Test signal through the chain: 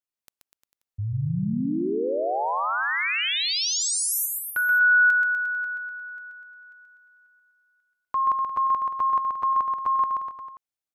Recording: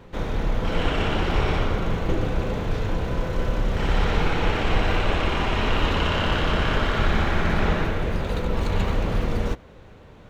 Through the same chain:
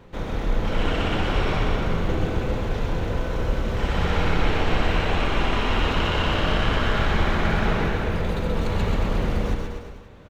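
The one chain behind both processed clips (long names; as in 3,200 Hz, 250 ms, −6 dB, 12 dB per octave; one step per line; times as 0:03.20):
bouncing-ball delay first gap 130 ms, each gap 0.9×, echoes 5
level −2 dB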